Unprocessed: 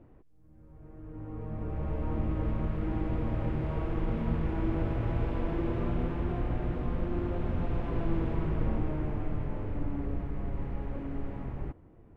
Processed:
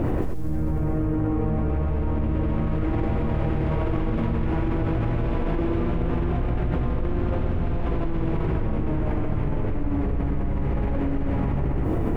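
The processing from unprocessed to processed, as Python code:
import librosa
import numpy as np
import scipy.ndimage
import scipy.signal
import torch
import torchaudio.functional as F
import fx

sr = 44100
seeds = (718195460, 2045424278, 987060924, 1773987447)

y = x + 10.0 ** (-6.5 / 20.0) * np.pad(x, (int(122 * sr / 1000.0), 0))[:len(x)]
y = fx.env_flatten(y, sr, amount_pct=100)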